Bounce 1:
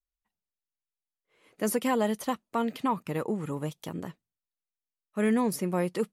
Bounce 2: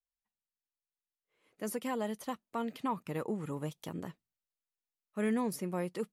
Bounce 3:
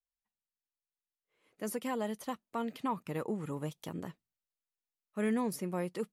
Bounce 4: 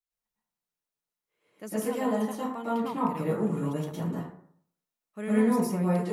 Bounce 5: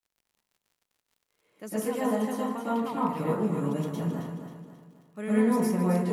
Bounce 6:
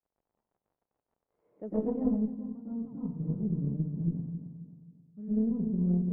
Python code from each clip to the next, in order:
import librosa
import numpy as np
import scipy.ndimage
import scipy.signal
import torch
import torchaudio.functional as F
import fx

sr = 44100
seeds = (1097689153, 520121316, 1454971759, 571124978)

y1 = fx.rider(x, sr, range_db=4, speed_s=2.0)
y1 = y1 * 10.0 ** (-7.5 / 20.0)
y2 = y1
y3 = fx.rev_plate(y2, sr, seeds[0], rt60_s=0.63, hf_ratio=0.45, predelay_ms=95, drr_db=-8.5)
y3 = y3 * 10.0 ** (-3.5 / 20.0)
y4 = fx.dmg_crackle(y3, sr, seeds[1], per_s=65.0, level_db=-54.0)
y4 = fx.echo_feedback(y4, sr, ms=268, feedback_pct=42, wet_db=-8)
y5 = fx.filter_sweep_lowpass(y4, sr, from_hz=760.0, to_hz=150.0, start_s=1.45, end_s=2.37, q=1.2)
y5 = fx.cheby_harmonics(y5, sr, harmonics=(2,), levels_db=(-12,), full_scale_db=-18.0)